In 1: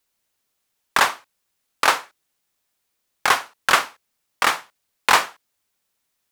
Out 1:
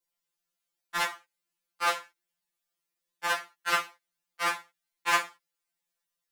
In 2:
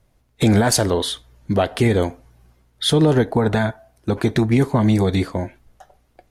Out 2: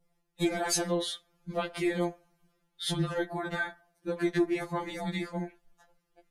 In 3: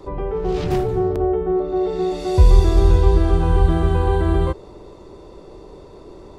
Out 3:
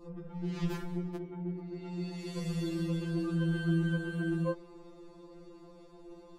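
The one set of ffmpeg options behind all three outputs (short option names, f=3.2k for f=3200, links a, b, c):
-af "adynamicequalizer=threshold=0.0158:dfrequency=1800:dqfactor=1.4:tfrequency=1800:tqfactor=1.4:attack=5:release=100:ratio=0.375:range=2:mode=boostabove:tftype=bell,afftfilt=real='re*2.83*eq(mod(b,8),0)':imag='im*2.83*eq(mod(b,8),0)':win_size=2048:overlap=0.75,volume=-9dB"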